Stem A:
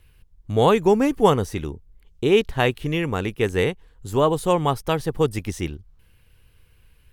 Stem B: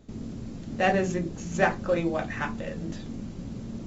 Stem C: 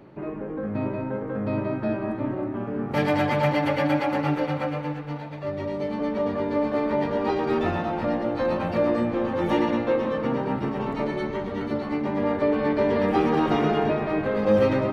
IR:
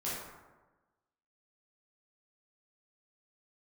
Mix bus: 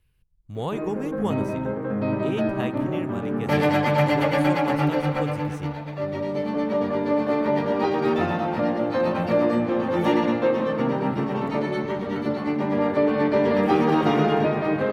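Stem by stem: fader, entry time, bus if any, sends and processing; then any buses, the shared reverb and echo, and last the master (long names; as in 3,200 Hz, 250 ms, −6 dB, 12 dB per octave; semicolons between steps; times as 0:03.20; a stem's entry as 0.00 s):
−13.5 dB, 0.00 s, no send, no processing
muted
+2.0 dB, 0.55 s, no send, high-pass filter 180 Hz 6 dB per octave; high-shelf EQ 11,000 Hz +6 dB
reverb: not used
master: parametric band 150 Hz +5.5 dB 1.1 octaves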